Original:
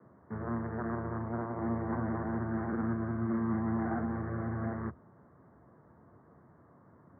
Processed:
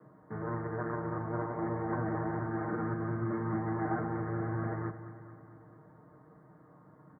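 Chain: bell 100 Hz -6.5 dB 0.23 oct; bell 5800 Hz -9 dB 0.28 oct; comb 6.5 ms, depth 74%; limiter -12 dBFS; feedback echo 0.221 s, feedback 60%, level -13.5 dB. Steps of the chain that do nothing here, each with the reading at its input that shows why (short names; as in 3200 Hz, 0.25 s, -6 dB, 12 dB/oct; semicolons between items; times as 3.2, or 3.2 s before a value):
bell 5800 Hz: input band ends at 1700 Hz; limiter -12 dBFS: input peak -20.5 dBFS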